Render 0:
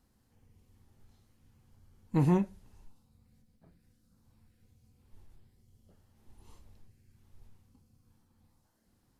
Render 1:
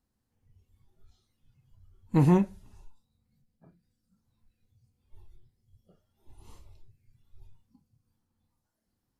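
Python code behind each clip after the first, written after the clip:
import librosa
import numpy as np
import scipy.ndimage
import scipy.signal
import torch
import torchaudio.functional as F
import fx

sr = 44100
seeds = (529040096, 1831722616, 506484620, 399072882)

y = fx.noise_reduce_blind(x, sr, reduce_db=14)
y = y * 10.0 ** (4.5 / 20.0)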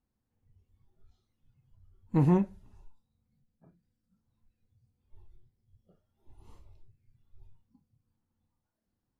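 y = fx.high_shelf(x, sr, hz=2900.0, db=-9.5)
y = y * 10.0 ** (-2.5 / 20.0)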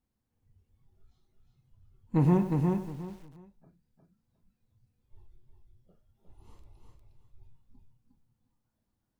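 y = fx.echo_feedback(x, sr, ms=358, feedback_pct=23, wet_db=-4)
y = fx.echo_crushed(y, sr, ms=97, feedback_pct=35, bits=8, wet_db=-11.5)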